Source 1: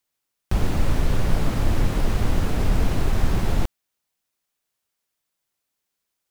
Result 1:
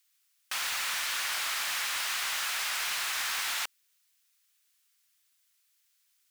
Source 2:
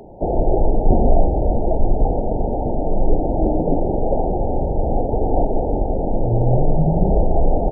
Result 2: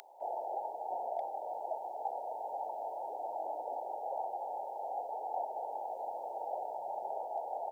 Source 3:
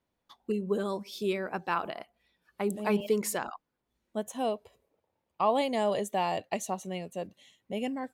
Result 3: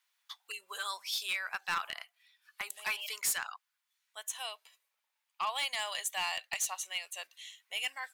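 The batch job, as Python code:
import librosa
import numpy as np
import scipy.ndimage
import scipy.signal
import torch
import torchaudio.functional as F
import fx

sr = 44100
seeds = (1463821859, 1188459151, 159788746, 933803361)

p1 = scipy.signal.sosfilt(scipy.signal.bessel(4, 1900.0, 'highpass', norm='mag', fs=sr, output='sos'), x)
p2 = fx.rider(p1, sr, range_db=4, speed_s=0.5)
p3 = p1 + (p2 * 10.0 ** (2.5 / 20.0))
p4 = np.clip(10.0 ** (28.0 / 20.0) * p3, -1.0, 1.0) / 10.0 ** (28.0 / 20.0)
y = p4 * 10.0 ** (1.5 / 20.0)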